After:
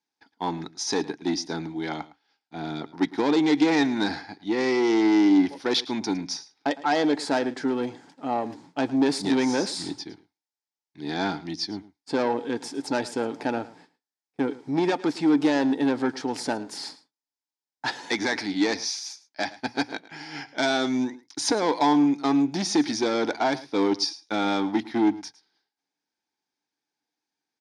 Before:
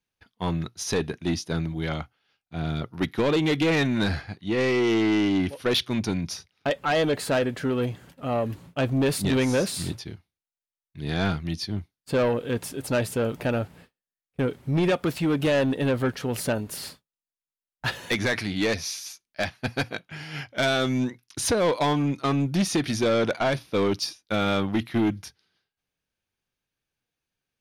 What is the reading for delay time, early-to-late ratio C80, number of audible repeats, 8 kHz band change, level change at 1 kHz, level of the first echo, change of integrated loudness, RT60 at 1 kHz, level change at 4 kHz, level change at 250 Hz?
109 ms, no reverb, 1, -0.5 dB, +3.0 dB, -18.5 dB, +0.5 dB, no reverb, +0.5 dB, +2.5 dB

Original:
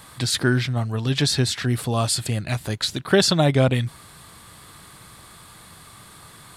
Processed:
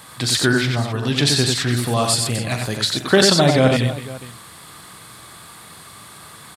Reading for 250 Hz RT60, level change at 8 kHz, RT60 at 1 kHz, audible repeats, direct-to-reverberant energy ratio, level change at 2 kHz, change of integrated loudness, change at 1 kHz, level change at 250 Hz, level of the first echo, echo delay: no reverb, +5.5 dB, no reverb, 4, no reverb, +5.5 dB, +4.0 dB, +5.5 dB, +4.0 dB, -11.5 dB, 42 ms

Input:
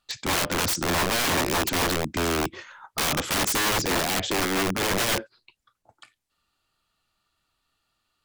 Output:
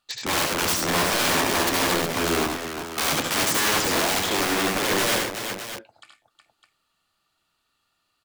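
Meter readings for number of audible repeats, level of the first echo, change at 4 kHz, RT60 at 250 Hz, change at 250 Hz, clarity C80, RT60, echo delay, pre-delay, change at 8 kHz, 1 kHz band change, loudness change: 3, -4.5 dB, +2.5 dB, no reverb, +1.5 dB, no reverb, no reverb, 72 ms, no reverb, +2.5 dB, +2.5 dB, +2.0 dB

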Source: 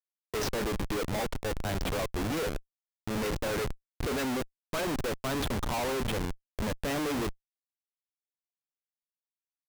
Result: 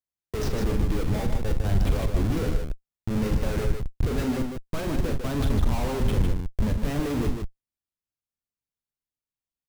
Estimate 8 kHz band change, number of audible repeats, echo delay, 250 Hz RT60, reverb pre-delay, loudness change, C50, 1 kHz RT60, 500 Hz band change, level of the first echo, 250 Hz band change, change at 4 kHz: -2.5 dB, 2, 42 ms, no reverb, no reverb, +5.0 dB, no reverb, no reverb, +1.5 dB, -8.5 dB, +6.0 dB, -2.5 dB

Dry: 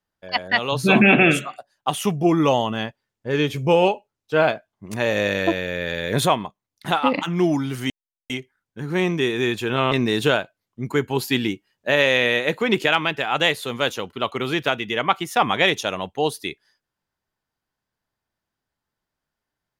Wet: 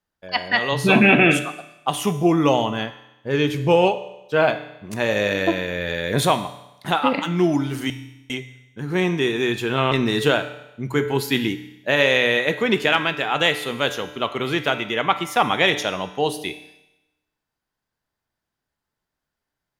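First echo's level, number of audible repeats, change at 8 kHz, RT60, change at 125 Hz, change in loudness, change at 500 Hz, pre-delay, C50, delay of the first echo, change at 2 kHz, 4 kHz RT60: no echo, no echo, +0.5 dB, 0.90 s, +0.5 dB, +0.5 dB, +0.5 dB, 7 ms, 12.0 dB, no echo, +0.5 dB, 0.95 s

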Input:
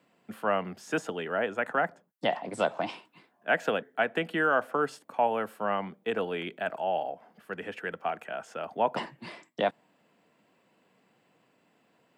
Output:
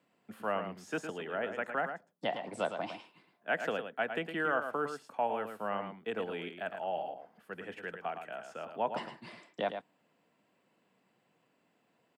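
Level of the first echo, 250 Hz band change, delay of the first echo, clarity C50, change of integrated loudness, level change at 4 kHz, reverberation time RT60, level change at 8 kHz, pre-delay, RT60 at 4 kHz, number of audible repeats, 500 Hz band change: -8.0 dB, -6.0 dB, 109 ms, no reverb, -6.0 dB, -6.0 dB, no reverb, no reading, no reverb, no reverb, 1, -6.0 dB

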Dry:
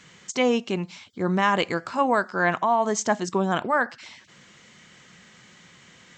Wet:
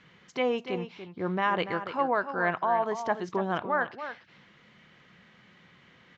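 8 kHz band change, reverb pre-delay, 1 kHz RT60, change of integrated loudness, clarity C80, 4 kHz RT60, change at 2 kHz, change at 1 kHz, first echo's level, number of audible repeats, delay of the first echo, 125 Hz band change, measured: under -20 dB, no reverb, no reverb, -5.5 dB, no reverb, no reverb, -5.0 dB, -4.5 dB, -10.5 dB, 1, 288 ms, -7.5 dB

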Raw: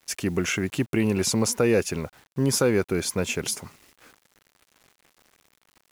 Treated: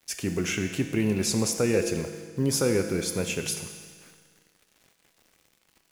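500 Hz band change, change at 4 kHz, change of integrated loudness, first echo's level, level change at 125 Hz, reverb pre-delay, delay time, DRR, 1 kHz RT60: -2.5 dB, -1.5 dB, -2.0 dB, no echo, -2.0 dB, 6 ms, no echo, 5.5 dB, 1.7 s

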